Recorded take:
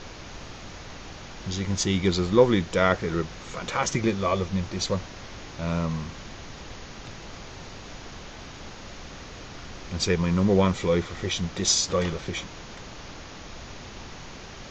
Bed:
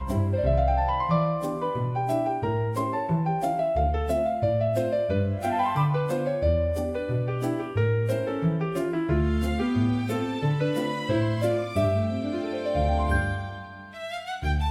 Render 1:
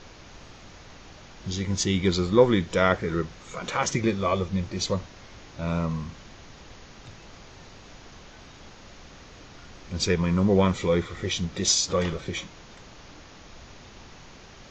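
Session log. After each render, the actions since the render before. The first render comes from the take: noise print and reduce 6 dB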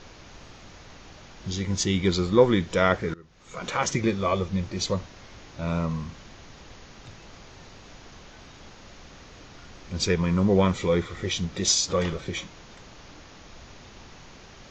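3.14–3.61 s: fade in quadratic, from -23.5 dB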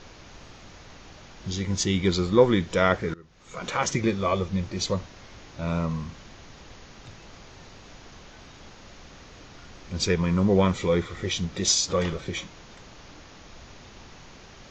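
no audible change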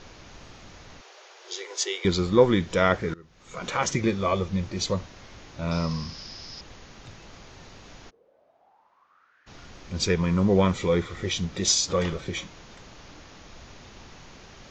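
1.01–2.05 s: steep high-pass 370 Hz 72 dB/octave; 5.71–6.61 s: resonant low-pass 5.1 kHz, resonance Q 12; 8.09–9.46 s: band-pass filter 420 Hz -> 1.7 kHz, Q 8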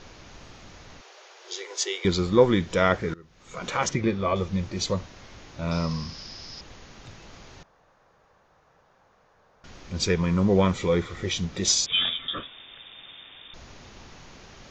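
3.89–4.36 s: distance through air 140 m; 7.63–9.64 s: room tone; 11.86–13.54 s: frequency inversion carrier 3.6 kHz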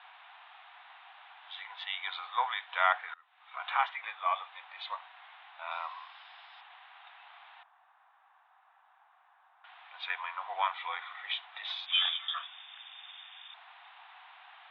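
Chebyshev band-pass 730–3700 Hz, order 5; tilt EQ -2 dB/octave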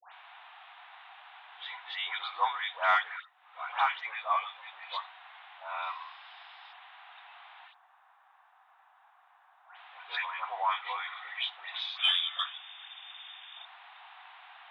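phase dispersion highs, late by 132 ms, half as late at 1.6 kHz; in parallel at -12 dB: saturation -23 dBFS, distortion -14 dB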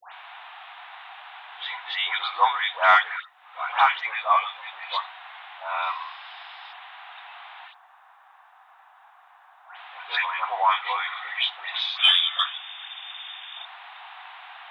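trim +9 dB

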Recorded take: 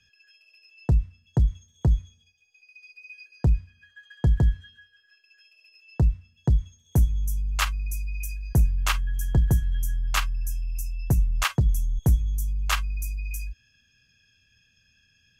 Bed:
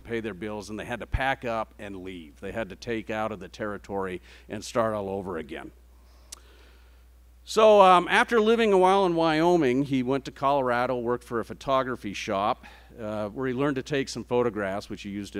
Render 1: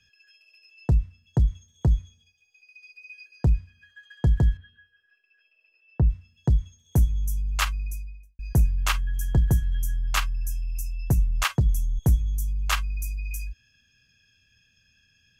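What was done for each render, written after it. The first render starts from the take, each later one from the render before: 4.57–6.10 s: distance through air 400 m; 7.72–8.39 s: studio fade out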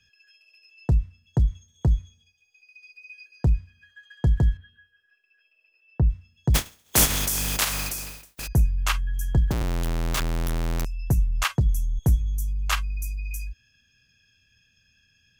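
6.54–8.46 s: spectral contrast reduction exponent 0.28; 9.51–10.85 s: Schmitt trigger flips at -36 dBFS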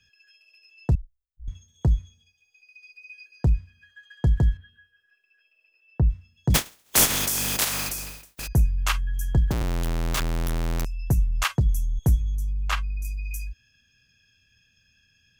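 0.95–1.48 s: inverse Chebyshev band-stop 140–9600 Hz, stop band 70 dB; 6.49–7.88 s: spectral peaks clipped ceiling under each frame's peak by 13 dB; 12.35–13.05 s: low-pass 3 kHz 6 dB/octave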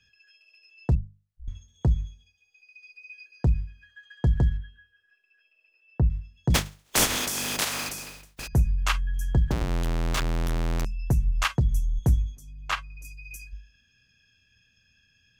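treble shelf 10 kHz -11.5 dB; hum notches 50/100/150/200 Hz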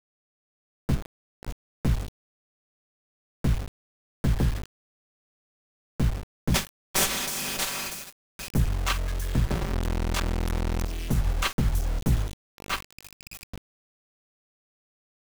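comb filter that takes the minimum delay 5.2 ms; word length cut 6-bit, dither none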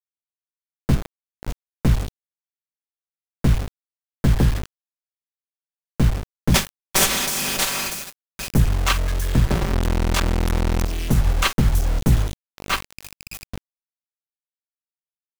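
trim +7 dB; peak limiter -3 dBFS, peak gain reduction 2 dB

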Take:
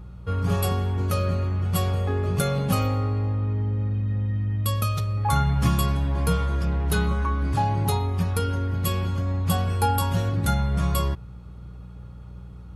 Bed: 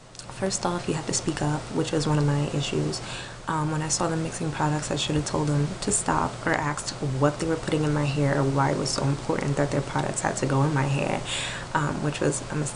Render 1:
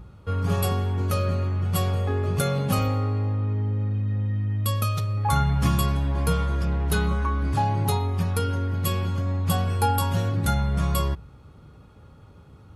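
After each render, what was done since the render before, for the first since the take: de-hum 60 Hz, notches 3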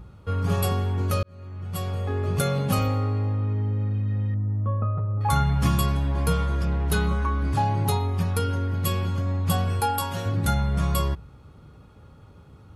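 1.23–2.36 s: fade in; 4.34–5.21 s: low-pass 1.2 kHz 24 dB/octave; 9.80–10.26 s: bass shelf 250 Hz -10 dB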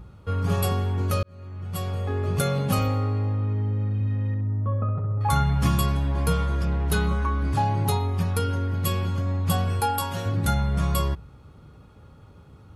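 3.94–5.28 s: flutter echo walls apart 11.2 m, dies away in 0.61 s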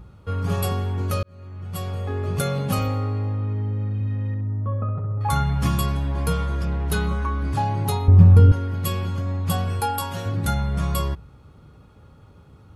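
8.08–8.52 s: tilt EQ -4.5 dB/octave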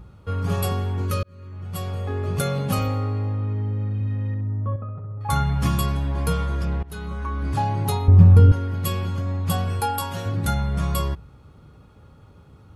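1.05–1.53 s: Butterworth band-stop 730 Hz, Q 2.4; 4.76–5.29 s: gain -7 dB; 6.83–7.52 s: fade in, from -20.5 dB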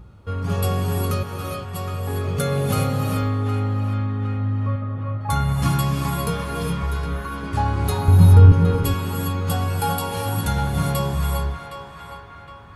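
band-passed feedback delay 764 ms, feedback 58%, band-pass 1.5 kHz, level -6 dB; gated-style reverb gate 440 ms rising, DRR 0 dB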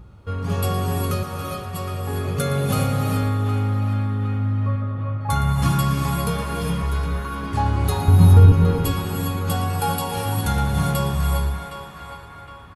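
delay 116 ms -12.5 dB; Schroeder reverb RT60 3 s, combs from 31 ms, DRR 10.5 dB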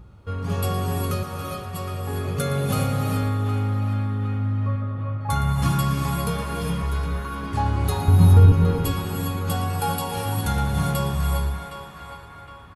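trim -2 dB

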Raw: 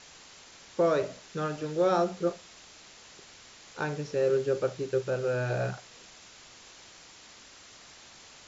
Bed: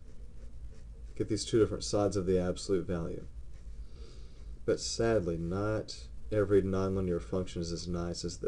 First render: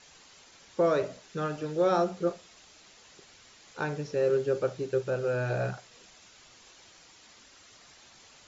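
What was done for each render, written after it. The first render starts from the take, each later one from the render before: noise reduction 6 dB, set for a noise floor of -52 dBFS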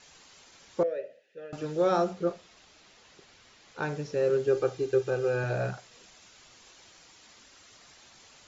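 0.83–1.53 s: vowel filter e; 2.13–3.83 s: distance through air 70 m; 4.47–5.44 s: comb 2.5 ms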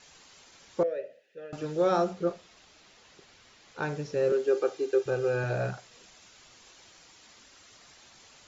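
4.32–5.06 s: high-pass 250 Hz 24 dB/octave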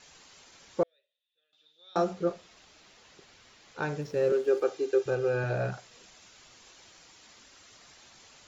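0.83–1.96 s: band-pass filter 3.6 kHz, Q 19; 4.01–4.63 s: hysteresis with a dead band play -48 dBFS; 5.15–5.72 s: distance through air 54 m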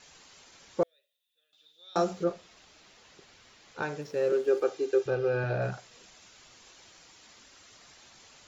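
0.82–2.24 s: treble shelf 5.7 kHz +11 dB; 3.82–4.33 s: high-pass 280 Hz 6 dB/octave; 5.07–5.62 s: low-pass 5.3 kHz 24 dB/octave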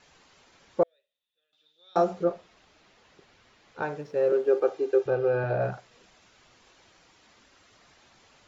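low-pass 2.3 kHz 6 dB/octave; dynamic bell 710 Hz, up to +6 dB, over -40 dBFS, Q 0.98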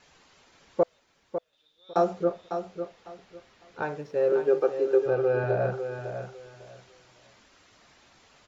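feedback delay 551 ms, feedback 22%, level -8.5 dB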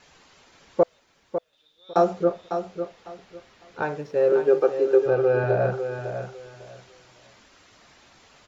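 trim +4 dB

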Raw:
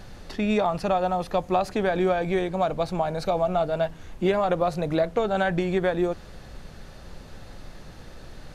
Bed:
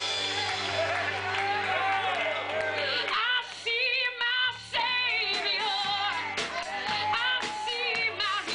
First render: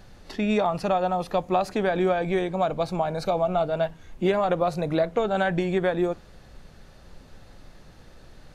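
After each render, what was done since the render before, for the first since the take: noise print and reduce 6 dB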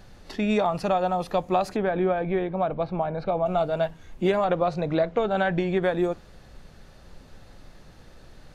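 1.76–3.46 s: distance through air 370 m; 4.44–5.83 s: low-pass 4.8 kHz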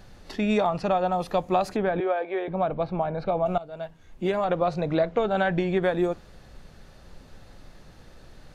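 0.69–1.12 s: distance through air 64 m; 2.00–2.48 s: high-pass 380 Hz 24 dB/octave; 3.58–4.69 s: fade in, from -18 dB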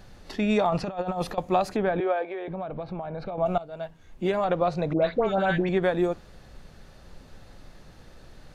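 0.72–1.38 s: compressor with a negative ratio -28 dBFS, ratio -0.5; 2.23–3.38 s: compression, threshold -30 dBFS; 4.93–5.69 s: phase dispersion highs, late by 97 ms, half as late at 1.3 kHz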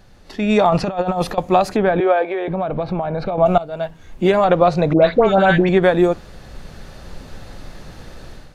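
level rider gain up to 12.5 dB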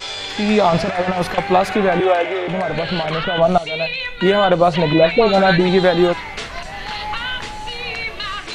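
add bed +2.5 dB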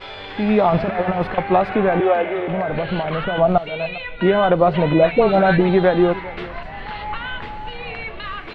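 distance through air 440 m; delay 401 ms -18.5 dB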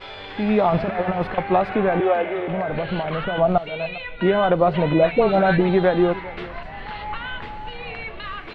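trim -2.5 dB

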